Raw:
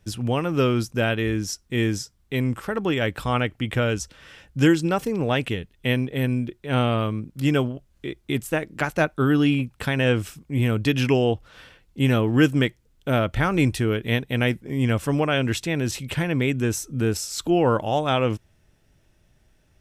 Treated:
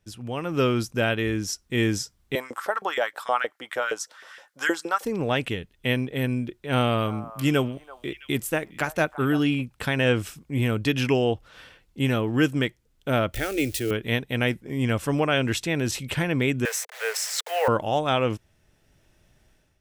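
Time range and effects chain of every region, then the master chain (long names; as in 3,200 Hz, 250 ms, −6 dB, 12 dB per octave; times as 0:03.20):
0:02.35–0:05.05: parametric band 2,600 Hz −8.5 dB 0.64 octaves + auto-filter high-pass saw up 6.4 Hz 480–2,000 Hz
0:06.72–0:09.43: high-shelf EQ 9,500 Hz +8.5 dB + echo through a band-pass that steps 333 ms, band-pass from 920 Hz, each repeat 1.4 octaves, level −11 dB
0:13.34–0:13.91: spike at every zero crossing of −25.5 dBFS + phaser with its sweep stopped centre 420 Hz, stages 4
0:16.65–0:17.68: hold until the input has moved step −34.5 dBFS + Butterworth high-pass 450 Hz 96 dB per octave + parametric band 1,900 Hz +10.5 dB 0.62 octaves
whole clip: low-shelf EQ 250 Hz −4 dB; automatic gain control; level −8.5 dB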